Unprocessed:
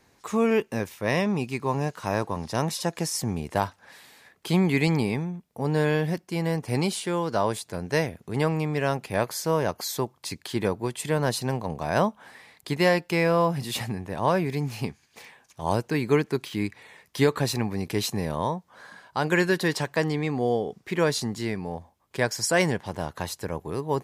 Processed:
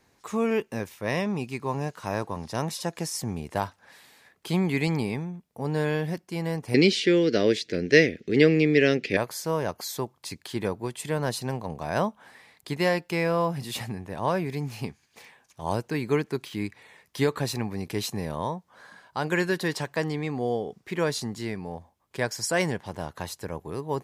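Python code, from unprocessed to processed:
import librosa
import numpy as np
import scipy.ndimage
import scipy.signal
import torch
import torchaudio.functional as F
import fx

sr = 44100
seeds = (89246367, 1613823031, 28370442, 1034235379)

y = fx.curve_eq(x, sr, hz=(120.0, 300.0, 460.0, 950.0, 1900.0, 3500.0, 5600.0, 10000.0), db=(0, 13, 12, -17, 14, 11, 9, -13), at=(6.74, 9.17))
y = F.gain(torch.from_numpy(y), -3.0).numpy()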